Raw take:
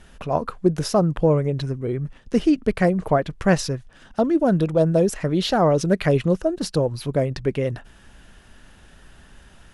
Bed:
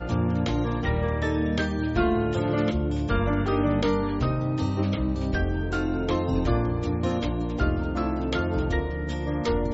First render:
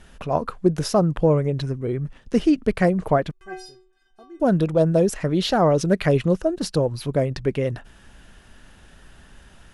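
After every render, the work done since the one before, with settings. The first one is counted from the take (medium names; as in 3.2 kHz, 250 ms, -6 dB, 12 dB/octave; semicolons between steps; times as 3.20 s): 3.31–4.40 s: inharmonic resonator 370 Hz, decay 0.44 s, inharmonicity 0.008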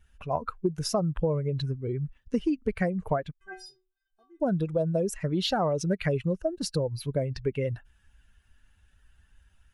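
expander on every frequency bin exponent 1.5; compression 6:1, threshold -23 dBFS, peak gain reduction 10 dB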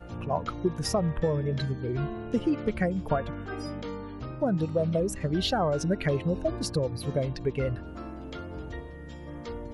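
add bed -13 dB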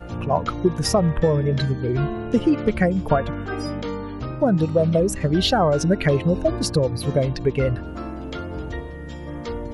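trim +8 dB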